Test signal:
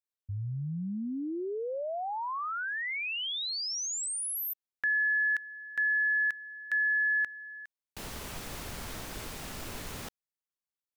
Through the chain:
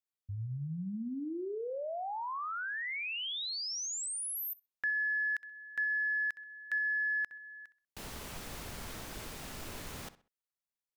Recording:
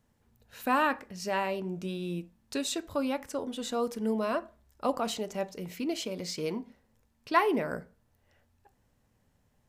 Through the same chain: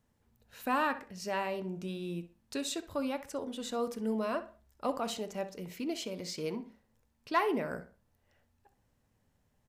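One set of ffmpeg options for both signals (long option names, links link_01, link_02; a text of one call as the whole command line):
ffmpeg -i in.wav -filter_complex "[0:a]asoftclip=type=tanh:threshold=-13dB,asplit=2[link_01][link_02];[link_02]adelay=64,lowpass=frequency=4300:poles=1,volume=-14.5dB,asplit=2[link_03][link_04];[link_04]adelay=64,lowpass=frequency=4300:poles=1,volume=0.32,asplit=2[link_05][link_06];[link_06]adelay=64,lowpass=frequency=4300:poles=1,volume=0.32[link_07];[link_01][link_03][link_05][link_07]amix=inputs=4:normalize=0,volume=-3.5dB" out.wav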